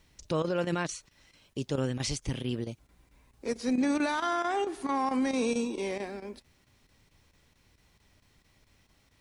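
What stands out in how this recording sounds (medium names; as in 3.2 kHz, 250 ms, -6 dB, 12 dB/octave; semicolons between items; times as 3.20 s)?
a quantiser's noise floor 12-bit, dither none; chopped level 4.5 Hz, depth 65%, duty 90%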